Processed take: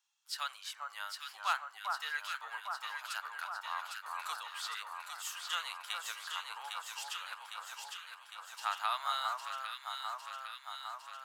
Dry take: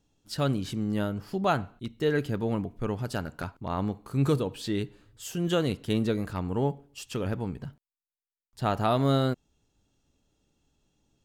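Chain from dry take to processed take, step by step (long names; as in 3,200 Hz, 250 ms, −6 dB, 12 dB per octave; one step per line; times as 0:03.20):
Butterworth high-pass 980 Hz 36 dB per octave
on a send: delay that swaps between a low-pass and a high-pass 403 ms, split 1,500 Hz, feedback 82%, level −2.5 dB
on the sum: level −2 dB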